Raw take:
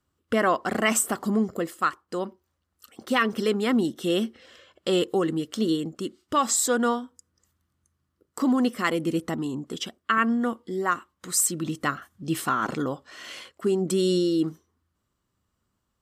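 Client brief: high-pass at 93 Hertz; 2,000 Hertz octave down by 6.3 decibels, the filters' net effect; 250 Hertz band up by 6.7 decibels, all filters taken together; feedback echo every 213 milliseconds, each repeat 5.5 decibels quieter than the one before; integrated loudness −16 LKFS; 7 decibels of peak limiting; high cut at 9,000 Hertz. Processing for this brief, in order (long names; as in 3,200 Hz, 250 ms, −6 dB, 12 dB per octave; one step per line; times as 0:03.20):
high-pass filter 93 Hz
low-pass filter 9,000 Hz
parametric band 250 Hz +8.5 dB
parametric band 2,000 Hz −8.5 dB
brickwall limiter −14 dBFS
repeating echo 213 ms, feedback 53%, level −5.5 dB
level +7 dB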